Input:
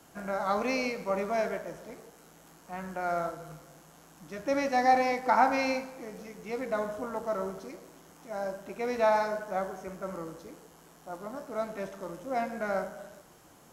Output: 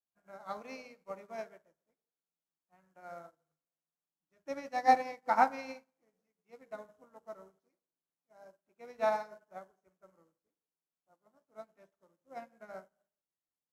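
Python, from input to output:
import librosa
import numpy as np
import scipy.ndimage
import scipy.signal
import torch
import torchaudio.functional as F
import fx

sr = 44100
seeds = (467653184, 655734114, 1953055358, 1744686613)

y = fx.hum_notches(x, sr, base_hz=50, count=8)
y = fx.upward_expand(y, sr, threshold_db=-50.0, expansion=2.5)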